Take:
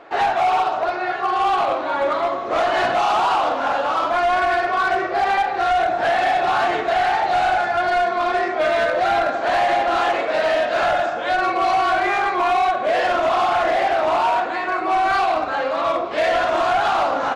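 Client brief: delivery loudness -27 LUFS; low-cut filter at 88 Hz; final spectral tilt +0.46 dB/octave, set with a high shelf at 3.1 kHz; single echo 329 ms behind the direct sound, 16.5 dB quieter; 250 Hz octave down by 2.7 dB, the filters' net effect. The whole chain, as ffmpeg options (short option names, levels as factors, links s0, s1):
-af "highpass=88,equalizer=f=250:t=o:g=-4.5,highshelf=f=3100:g=4,aecho=1:1:329:0.15,volume=0.398"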